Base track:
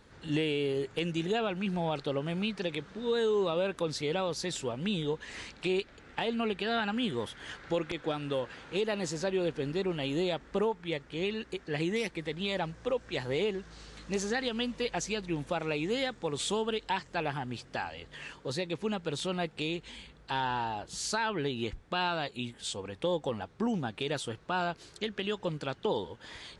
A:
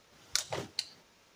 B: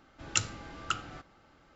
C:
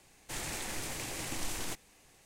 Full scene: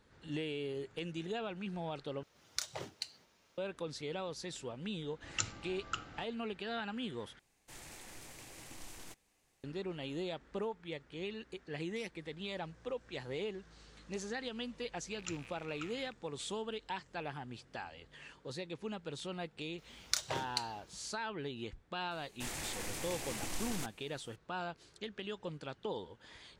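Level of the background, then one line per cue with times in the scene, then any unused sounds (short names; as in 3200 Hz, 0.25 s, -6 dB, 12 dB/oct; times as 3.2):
base track -9 dB
2.23 replace with A -6.5 dB
5.03 add B -7 dB
7.39 replace with C -13 dB
14.91 add B -17 dB + rattling part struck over -49 dBFS, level -23 dBFS
19.78 add A -2 dB
22.11 add C -3 dB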